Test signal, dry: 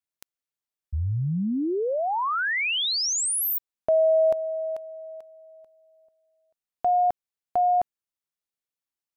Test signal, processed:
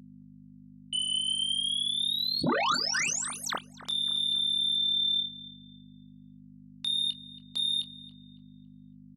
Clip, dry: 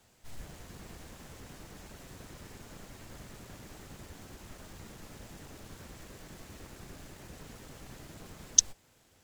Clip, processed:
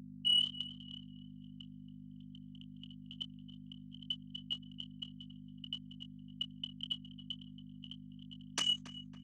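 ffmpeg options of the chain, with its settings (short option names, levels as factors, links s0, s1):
-filter_complex "[0:a]afftfilt=real='real(if(lt(b,272),68*(eq(floor(b/68),0)*1+eq(floor(b/68),1)*3+eq(floor(b/68),2)*0+eq(floor(b/68),3)*2)+mod(b,68),b),0)':imag='imag(if(lt(b,272),68*(eq(floor(b/68),0)*1+eq(floor(b/68),1)*3+eq(floor(b/68),2)*0+eq(floor(b/68),3)*2)+mod(b,68),b),0)':win_size=2048:overlap=0.75,afftdn=nr=19:nf=-39,agate=range=0.00501:threshold=0.00447:ratio=16:release=103:detection=rms,acompressor=threshold=0.0112:ratio=2:attack=28:release=25:knee=6:detection=rms,tremolo=f=36:d=0.75,aeval=exprs='0.0708*sin(PI/2*5.62*val(0)/0.0708)':c=same,aeval=exprs='val(0)+0.00794*(sin(2*PI*50*n/s)+sin(2*PI*2*50*n/s)/2+sin(2*PI*3*50*n/s)/3+sin(2*PI*4*50*n/s)/4+sin(2*PI*5*50*n/s)/5)':c=same,highpass=170,equalizer=f=170:t=q:w=4:g=7,equalizer=f=260:t=q:w=4:g=7,equalizer=f=1200:t=q:w=4:g=5,lowpass=f=7700:w=0.5412,lowpass=f=7700:w=1.3066,asplit=2[s0][s1];[s1]adelay=25,volume=0.282[s2];[s0][s2]amix=inputs=2:normalize=0,asplit=2[s3][s4];[s4]adelay=278,lowpass=f=2700:p=1,volume=0.178,asplit=2[s5][s6];[s6]adelay=278,lowpass=f=2700:p=1,volume=0.42,asplit=2[s7][s8];[s8]adelay=278,lowpass=f=2700:p=1,volume=0.42,asplit=2[s9][s10];[s10]adelay=278,lowpass=f=2700:p=1,volume=0.42[s11];[s3][s5][s7][s9][s11]amix=inputs=5:normalize=0,volume=0.75"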